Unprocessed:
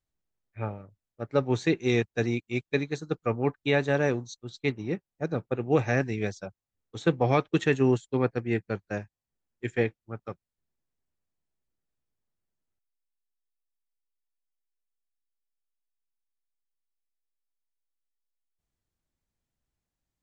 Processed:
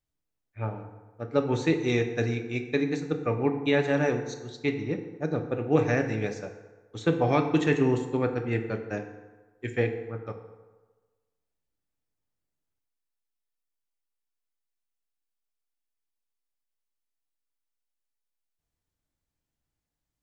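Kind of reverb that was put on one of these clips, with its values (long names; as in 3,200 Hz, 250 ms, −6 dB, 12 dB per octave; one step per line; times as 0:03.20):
feedback delay network reverb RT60 1.3 s, low-frequency decay 0.85×, high-frequency decay 0.6×, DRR 5 dB
level −1 dB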